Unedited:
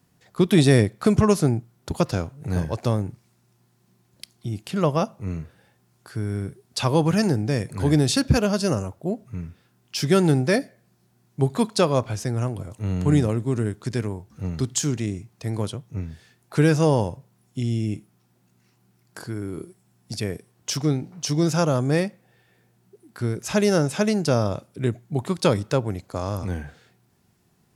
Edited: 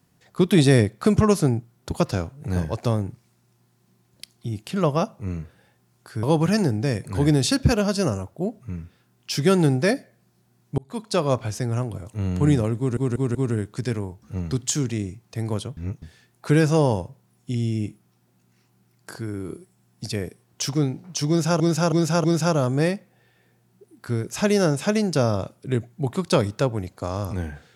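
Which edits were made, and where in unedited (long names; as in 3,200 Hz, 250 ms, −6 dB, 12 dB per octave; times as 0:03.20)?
0:06.23–0:06.88: remove
0:11.43–0:11.97: fade in
0:13.43: stutter 0.19 s, 4 plays
0:15.85–0:16.10: reverse
0:21.36–0:21.68: repeat, 4 plays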